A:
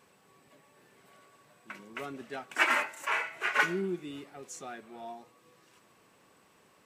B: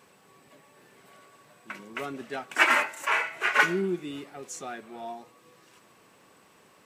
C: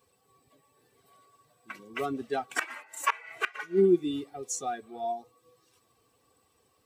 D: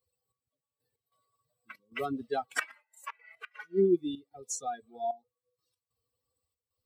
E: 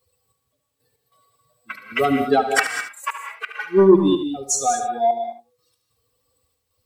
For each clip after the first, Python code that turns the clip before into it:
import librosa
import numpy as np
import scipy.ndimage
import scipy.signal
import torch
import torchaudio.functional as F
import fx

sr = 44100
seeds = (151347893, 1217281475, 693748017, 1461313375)

y1 = fx.low_shelf(x, sr, hz=66.0, db=-5.5)
y1 = F.gain(torch.from_numpy(y1), 5.0).numpy()
y2 = fx.bin_expand(y1, sr, power=1.5)
y2 = y2 + 0.36 * np.pad(y2, (int(2.6 * sr / 1000.0), 0))[:len(y2)]
y2 = fx.gate_flip(y2, sr, shuts_db=-19.0, range_db=-25)
y2 = F.gain(torch.from_numpy(y2), 7.0).numpy()
y3 = fx.bin_expand(y2, sr, power=1.5)
y3 = fx.rider(y3, sr, range_db=10, speed_s=2.0)
y3 = fx.step_gate(y3, sr, bpm=94, pattern='xx...x.xxxx.xxx', floor_db=-12.0, edge_ms=4.5)
y3 = F.gain(torch.from_numpy(y3), -3.0).numpy()
y4 = fx.fold_sine(y3, sr, drive_db=5, ceiling_db=-13.5)
y4 = y4 + 10.0 ** (-10.0 / 20.0) * np.pad(y4, (int(73 * sr / 1000.0), 0))[:len(y4)]
y4 = fx.rev_gated(y4, sr, seeds[0], gate_ms=230, shape='rising', drr_db=6.5)
y4 = F.gain(torch.from_numpy(y4), 6.0).numpy()